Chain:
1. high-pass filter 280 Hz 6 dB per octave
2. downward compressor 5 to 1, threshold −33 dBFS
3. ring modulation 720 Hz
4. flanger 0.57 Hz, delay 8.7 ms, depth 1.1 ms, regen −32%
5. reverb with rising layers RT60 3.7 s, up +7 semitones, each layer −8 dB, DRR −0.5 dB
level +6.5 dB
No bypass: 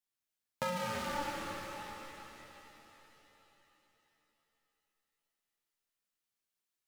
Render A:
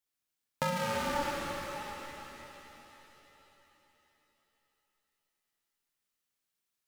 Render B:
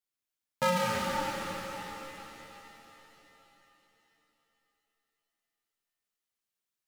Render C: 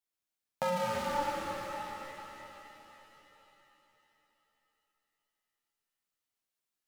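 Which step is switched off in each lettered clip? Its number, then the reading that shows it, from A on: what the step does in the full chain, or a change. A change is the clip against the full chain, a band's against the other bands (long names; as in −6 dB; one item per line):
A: 4, change in integrated loudness +4.0 LU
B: 2, average gain reduction 2.0 dB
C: 1, 500 Hz band +4.5 dB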